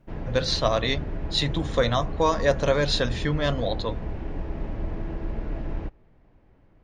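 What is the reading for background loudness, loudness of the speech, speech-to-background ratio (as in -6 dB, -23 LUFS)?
-34.5 LUFS, -25.5 LUFS, 9.0 dB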